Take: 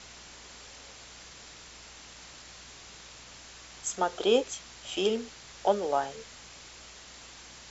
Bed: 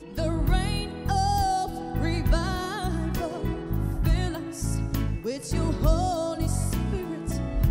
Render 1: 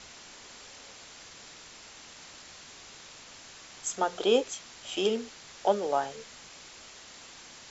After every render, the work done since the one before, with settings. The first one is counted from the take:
hum removal 60 Hz, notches 3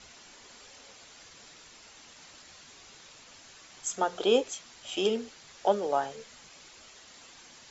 broadband denoise 6 dB, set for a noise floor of −50 dBFS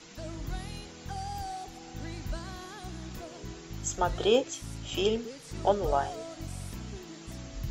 mix in bed −13.5 dB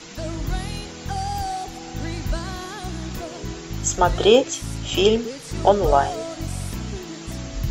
level +10.5 dB
brickwall limiter −3 dBFS, peak gain reduction 1.5 dB

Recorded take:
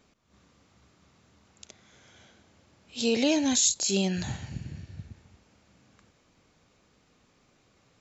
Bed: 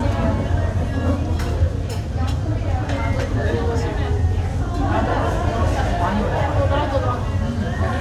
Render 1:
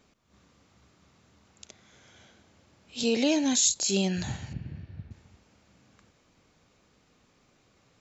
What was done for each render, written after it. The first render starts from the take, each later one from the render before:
0:03.03–0:03.58: Chebyshev high-pass filter 180 Hz
0:04.53–0:05.11: high-frequency loss of the air 260 metres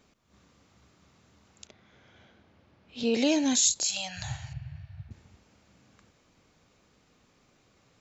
0:01.67–0:03.14: high-frequency loss of the air 200 metres
0:03.87–0:05.09: elliptic band-stop filter 140–660 Hz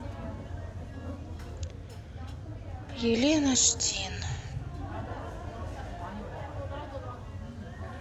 mix in bed −19.5 dB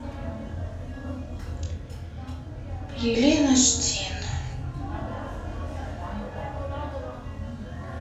double-tracking delay 24 ms −5 dB
rectangular room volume 900 cubic metres, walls furnished, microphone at 2.3 metres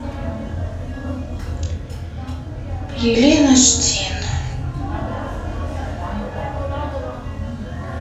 level +8 dB
brickwall limiter −1 dBFS, peak gain reduction 2 dB

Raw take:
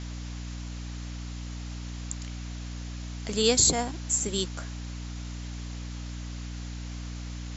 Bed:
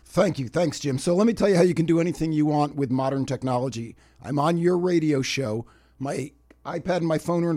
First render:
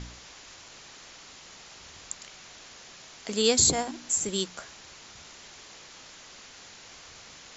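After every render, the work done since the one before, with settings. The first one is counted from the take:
hum removal 60 Hz, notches 5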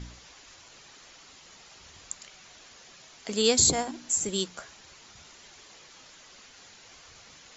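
broadband denoise 6 dB, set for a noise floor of −49 dBFS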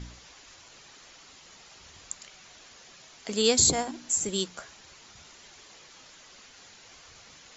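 no processing that can be heard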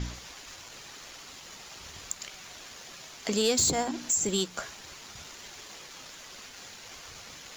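downward compressor 2 to 1, threshold −34 dBFS, peak gain reduction 9.5 dB
leveller curve on the samples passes 2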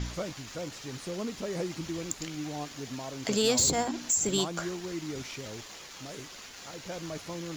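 mix in bed −15.5 dB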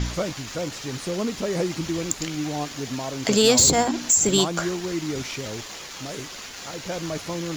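level +8.5 dB

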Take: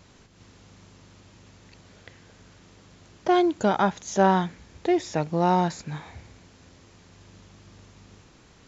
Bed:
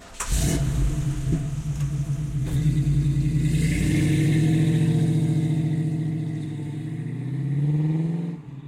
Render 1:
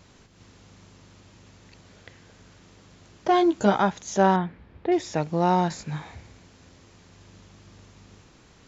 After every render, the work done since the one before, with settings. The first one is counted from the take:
0:03.28–0:03.79: double-tracking delay 15 ms −4 dB
0:04.36–0:04.92: high-frequency loss of the air 420 metres
0:05.69–0:06.15: double-tracking delay 19 ms −5 dB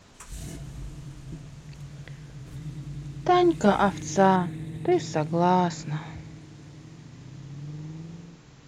mix in bed −16 dB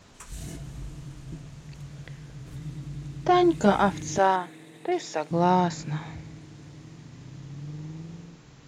0:04.18–0:05.31: high-pass filter 440 Hz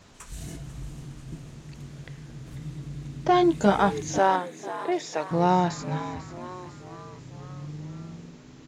echo with shifted repeats 495 ms, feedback 54%, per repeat +91 Hz, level −14 dB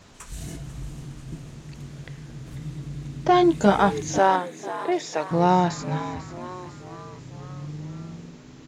level +2.5 dB

